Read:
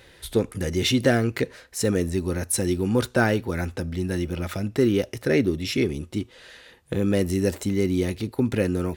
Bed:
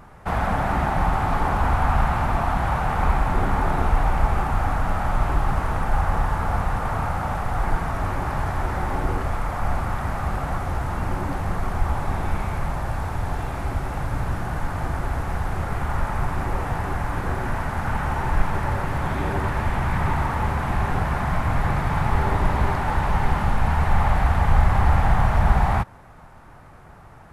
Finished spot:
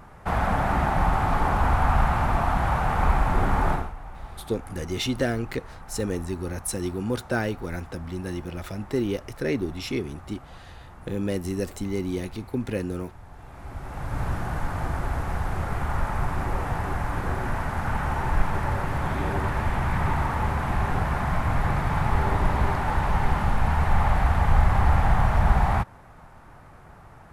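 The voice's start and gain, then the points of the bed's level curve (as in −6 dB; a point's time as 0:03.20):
4.15 s, −5.5 dB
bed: 0:03.73 −1 dB
0:03.94 −19.5 dB
0:13.30 −19.5 dB
0:14.23 −2 dB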